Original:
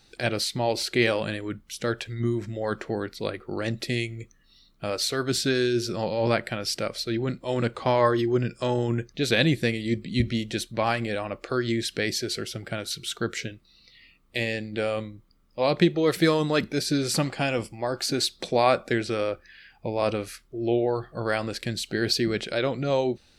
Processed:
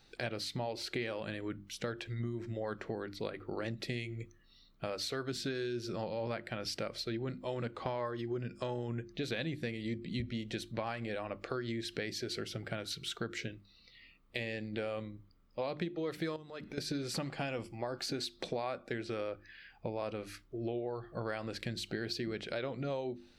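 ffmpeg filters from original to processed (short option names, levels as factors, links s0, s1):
-filter_complex "[0:a]asettb=1/sr,asplit=3[s0][s1][s2];[s0]atrim=end=16.364[s3];[s1]atrim=start=16.36:end=16.78,asetpts=PTS-STARTPTS,afade=t=in:d=0.004:c=qsin,afade=t=out:st=0.416:d=0.004:c=qsin,acompressor=threshold=0.0158:ratio=8:attack=3.2:release=140:knee=1:detection=peak[s4];[s2]atrim=start=16.776[s5];[s3][s4]acrossfade=d=0.004:c1=hsin:c2=qsin[s6];[s6][s5]acrossfade=d=0.004:c1=qsin:c2=hsin,equalizer=f=10000:t=o:w=1.6:g=-8.5,bandreject=f=50:t=h:w=6,bandreject=f=100:t=h:w=6,bandreject=f=150:t=h:w=6,bandreject=f=200:t=h:w=6,bandreject=f=250:t=h:w=6,bandreject=f=300:t=h:w=6,bandreject=f=350:t=h:w=6,acompressor=threshold=0.0282:ratio=6,volume=0.668"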